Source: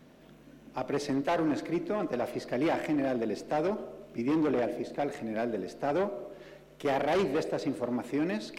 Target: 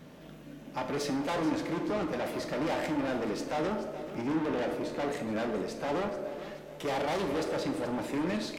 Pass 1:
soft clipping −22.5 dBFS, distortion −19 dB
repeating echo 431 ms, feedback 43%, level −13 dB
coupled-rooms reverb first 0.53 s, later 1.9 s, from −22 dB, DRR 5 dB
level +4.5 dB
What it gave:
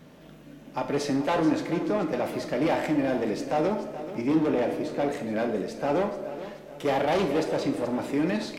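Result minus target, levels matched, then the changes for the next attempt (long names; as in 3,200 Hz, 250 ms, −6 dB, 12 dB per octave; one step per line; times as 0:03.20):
soft clipping: distortion −12 dB
change: soft clipping −34 dBFS, distortion −7 dB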